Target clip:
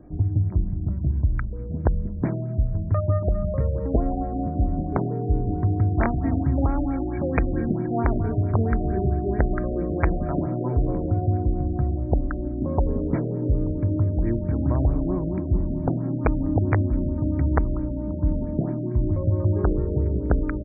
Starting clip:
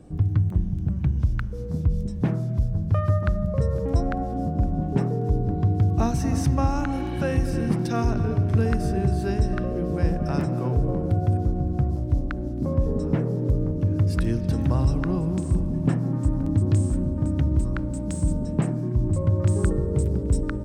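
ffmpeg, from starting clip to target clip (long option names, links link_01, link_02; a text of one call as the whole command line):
ffmpeg -i in.wav -af "aecho=1:1:3.1:0.37,aeval=exprs='(mod(3.35*val(0)+1,2)-1)/3.35':channel_layout=same,afftfilt=real='re*lt(b*sr/1024,720*pow(2500/720,0.5+0.5*sin(2*PI*4.5*pts/sr)))':imag='im*lt(b*sr/1024,720*pow(2500/720,0.5+0.5*sin(2*PI*4.5*pts/sr)))':win_size=1024:overlap=0.75" out.wav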